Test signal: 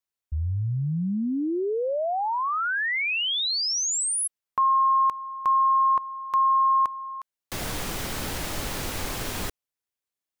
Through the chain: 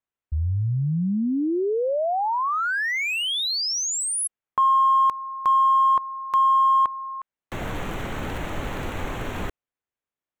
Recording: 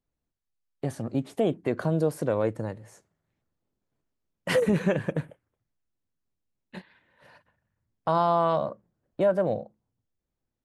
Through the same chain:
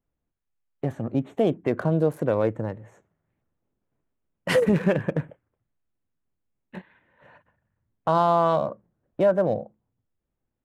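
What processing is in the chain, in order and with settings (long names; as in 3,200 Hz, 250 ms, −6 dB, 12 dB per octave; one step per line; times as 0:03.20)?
adaptive Wiener filter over 9 samples
level +3 dB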